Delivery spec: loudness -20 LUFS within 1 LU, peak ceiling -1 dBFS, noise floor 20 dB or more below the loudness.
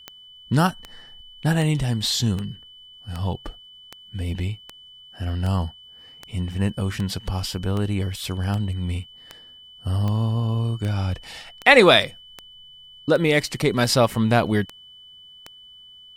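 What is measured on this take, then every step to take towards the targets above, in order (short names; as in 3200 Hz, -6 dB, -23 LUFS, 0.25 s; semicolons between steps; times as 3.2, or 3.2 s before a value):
clicks 21; steady tone 3000 Hz; tone level -44 dBFS; loudness -22.5 LUFS; peak -1.0 dBFS; loudness target -20.0 LUFS
-> de-click; notch 3000 Hz, Q 30; gain +2.5 dB; limiter -1 dBFS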